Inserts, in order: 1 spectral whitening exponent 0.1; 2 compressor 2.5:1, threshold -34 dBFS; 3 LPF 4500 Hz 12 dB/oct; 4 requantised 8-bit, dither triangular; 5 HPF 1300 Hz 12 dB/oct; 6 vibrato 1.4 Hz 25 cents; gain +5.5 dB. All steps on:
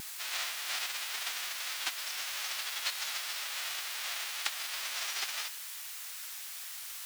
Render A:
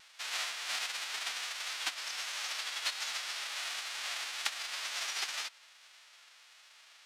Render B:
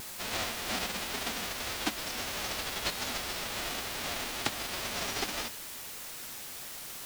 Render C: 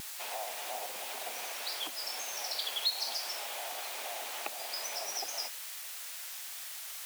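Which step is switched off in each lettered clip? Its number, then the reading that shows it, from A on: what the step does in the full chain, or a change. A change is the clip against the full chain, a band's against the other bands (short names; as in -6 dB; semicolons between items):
4, distortion -5 dB; 5, 500 Hz band +14.0 dB; 1, 500 Hz band +12.0 dB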